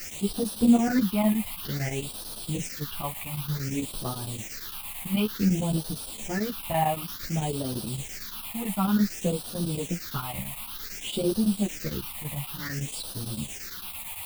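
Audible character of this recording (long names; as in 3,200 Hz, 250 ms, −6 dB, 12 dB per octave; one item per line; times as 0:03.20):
a quantiser's noise floor 6 bits, dither triangular
phaser sweep stages 6, 0.55 Hz, lowest notch 390–2,100 Hz
chopped level 8.9 Hz, depth 65%, duty 80%
a shimmering, thickened sound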